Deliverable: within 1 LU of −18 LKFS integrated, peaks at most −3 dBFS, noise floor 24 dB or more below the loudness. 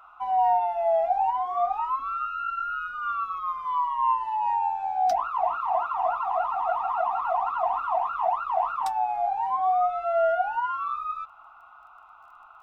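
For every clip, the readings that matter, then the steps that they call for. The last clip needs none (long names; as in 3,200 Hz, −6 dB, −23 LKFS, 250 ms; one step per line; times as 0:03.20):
crackle rate 14 per second; integrated loudness −26.0 LKFS; sample peak −13.5 dBFS; target loudness −18.0 LKFS
→ click removal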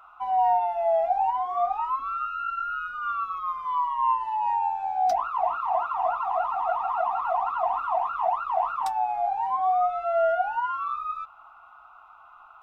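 crackle rate 0.079 per second; integrated loudness −26.0 LKFS; sample peak −13.5 dBFS; target loudness −18.0 LKFS
→ level +8 dB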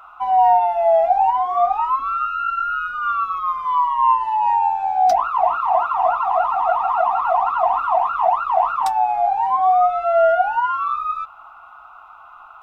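integrated loudness −18.0 LKFS; sample peak −5.5 dBFS; background noise floor −43 dBFS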